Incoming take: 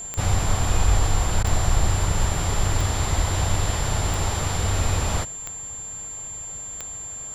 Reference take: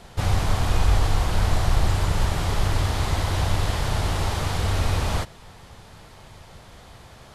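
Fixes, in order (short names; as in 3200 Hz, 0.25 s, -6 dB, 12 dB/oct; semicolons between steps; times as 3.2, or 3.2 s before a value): de-click; notch 7300 Hz, Q 30; 3.17–3.29 HPF 140 Hz 24 dB/oct; interpolate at 1.43, 12 ms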